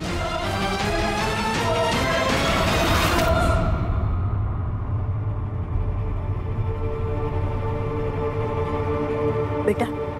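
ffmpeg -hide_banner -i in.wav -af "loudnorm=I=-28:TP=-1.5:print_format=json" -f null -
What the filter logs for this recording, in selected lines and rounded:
"input_i" : "-23.8",
"input_tp" : "-8.5",
"input_lra" : "5.7",
"input_thresh" : "-33.8",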